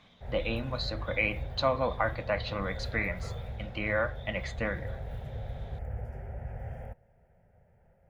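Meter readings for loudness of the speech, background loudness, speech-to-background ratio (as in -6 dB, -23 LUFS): -32.5 LUFS, -40.5 LUFS, 8.0 dB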